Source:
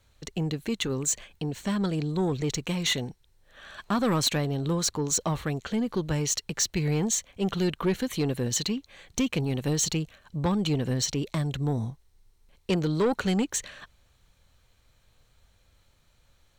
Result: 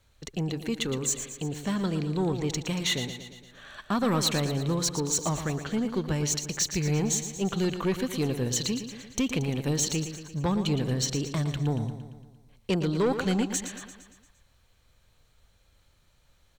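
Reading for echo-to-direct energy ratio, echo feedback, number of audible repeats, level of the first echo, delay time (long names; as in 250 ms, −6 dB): −8.5 dB, 57%, 6, −10.0 dB, 115 ms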